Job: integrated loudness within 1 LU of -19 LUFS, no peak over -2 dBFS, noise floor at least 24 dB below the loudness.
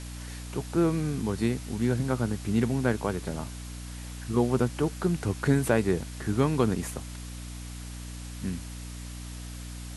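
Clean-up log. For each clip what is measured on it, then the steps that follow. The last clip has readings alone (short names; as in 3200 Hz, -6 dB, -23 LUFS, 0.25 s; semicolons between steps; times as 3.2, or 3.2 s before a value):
hum 60 Hz; harmonics up to 300 Hz; hum level -36 dBFS; noise floor -40 dBFS; noise floor target -53 dBFS; loudness -28.5 LUFS; peak -9.5 dBFS; loudness target -19.0 LUFS
-> de-hum 60 Hz, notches 5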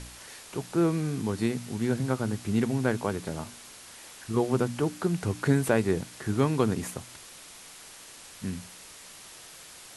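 hum none; noise floor -48 dBFS; noise floor target -53 dBFS
-> denoiser 6 dB, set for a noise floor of -48 dBFS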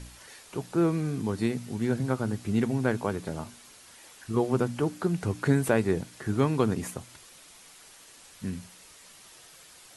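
noise floor -53 dBFS; loudness -29.0 LUFS; peak -9.5 dBFS; loudness target -19.0 LUFS
-> gain +10 dB; limiter -2 dBFS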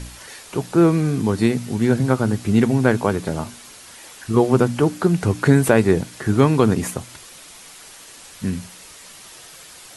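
loudness -19.0 LUFS; peak -2.0 dBFS; noise floor -43 dBFS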